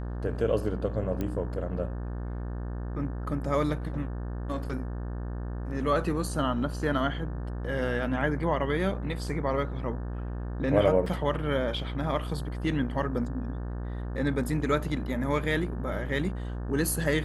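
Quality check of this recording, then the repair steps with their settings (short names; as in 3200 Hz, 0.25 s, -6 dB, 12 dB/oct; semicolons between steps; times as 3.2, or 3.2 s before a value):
buzz 60 Hz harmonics 30 -34 dBFS
1.21 pop -19 dBFS
11.06 gap 4.1 ms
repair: de-click; de-hum 60 Hz, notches 30; interpolate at 11.06, 4.1 ms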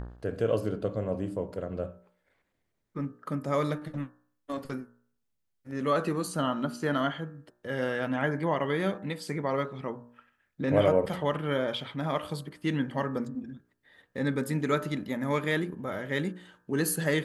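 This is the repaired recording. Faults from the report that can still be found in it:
none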